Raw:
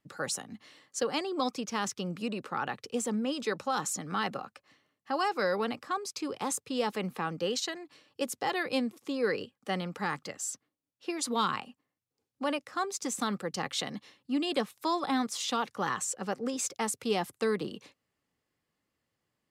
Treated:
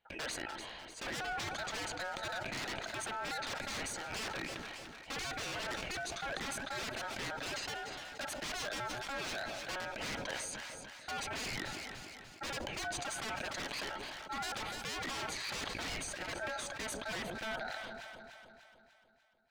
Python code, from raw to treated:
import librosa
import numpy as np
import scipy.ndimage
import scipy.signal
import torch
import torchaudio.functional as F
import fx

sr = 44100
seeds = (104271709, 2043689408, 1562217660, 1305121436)

p1 = fx.fade_out_tail(x, sr, length_s=4.05)
p2 = scipy.signal.sosfilt(scipy.signal.butter(2, 450.0, 'highpass', fs=sr, output='sos'), p1)
p3 = np.clip(p2, -10.0 ** (-30.5 / 20.0), 10.0 ** (-30.5 / 20.0))
p4 = scipy.signal.savgol_filter(p3, 25, 4, mode='constant')
p5 = 10.0 ** (-38.0 / 20.0) * (np.abs((p4 / 10.0 ** (-38.0 / 20.0) + 3.0) % 4.0 - 2.0) - 1.0)
p6 = p5 * np.sin(2.0 * np.pi * 1100.0 * np.arange(len(p5)) / sr)
p7 = p6 + fx.echo_alternate(p6, sr, ms=148, hz=810.0, feedback_pct=71, wet_db=-12.5, dry=0)
p8 = fx.sustainer(p7, sr, db_per_s=20.0)
y = p8 * 10.0 ** (6.5 / 20.0)